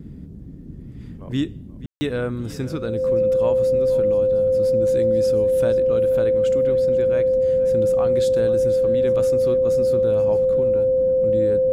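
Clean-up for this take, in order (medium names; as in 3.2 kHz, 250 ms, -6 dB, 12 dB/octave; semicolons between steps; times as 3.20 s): band-stop 520 Hz, Q 30; room tone fill 1.86–2.01 s; noise print and reduce 30 dB; inverse comb 483 ms -17 dB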